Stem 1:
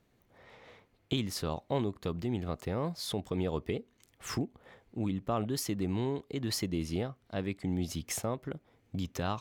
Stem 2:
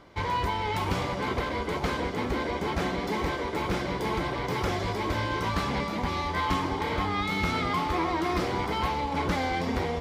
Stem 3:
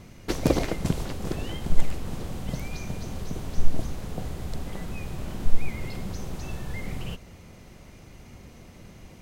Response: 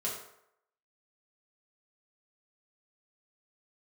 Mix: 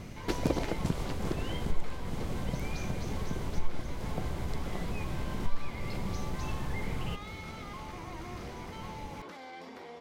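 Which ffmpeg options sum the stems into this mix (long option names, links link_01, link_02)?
-filter_complex "[1:a]volume=-14.5dB[link_01];[2:a]highshelf=frequency=6500:gain=-4.5,acompressor=threshold=-36dB:ratio=2,volume=3dB[link_02];[link_01]highpass=270,alimiter=level_in=13.5dB:limit=-24dB:level=0:latency=1:release=20,volume=-13.5dB,volume=0dB[link_03];[link_02][link_03]amix=inputs=2:normalize=0"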